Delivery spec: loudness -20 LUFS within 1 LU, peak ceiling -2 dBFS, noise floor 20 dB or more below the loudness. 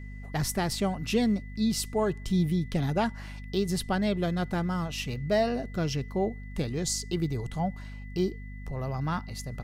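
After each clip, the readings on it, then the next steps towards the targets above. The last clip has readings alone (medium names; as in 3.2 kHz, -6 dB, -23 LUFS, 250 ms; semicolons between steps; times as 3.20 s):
hum 50 Hz; highest harmonic 250 Hz; hum level -39 dBFS; steady tone 2 kHz; tone level -51 dBFS; loudness -30.0 LUFS; peak level -14.5 dBFS; loudness target -20.0 LUFS
-> hum notches 50/100/150/200/250 Hz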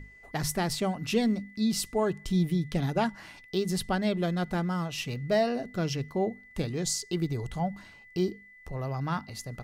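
hum not found; steady tone 2 kHz; tone level -51 dBFS
-> band-stop 2 kHz, Q 30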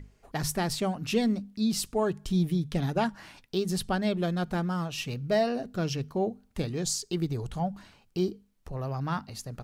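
steady tone not found; loudness -30.5 LUFS; peak level -14.5 dBFS; loudness target -20.0 LUFS
-> trim +10.5 dB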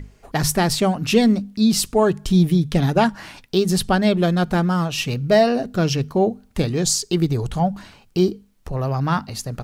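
loudness -20.0 LUFS; peak level -4.0 dBFS; noise floor -54 dBFS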